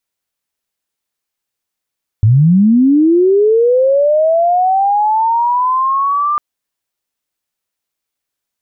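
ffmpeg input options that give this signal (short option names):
-f lavfi -i "aevalsrc='pow(10,(-5-6.5*t/4.15)/20)*sin(2*PI*(100*t+1100*t*t/(2*4.15)))':d=4.15:s=44100"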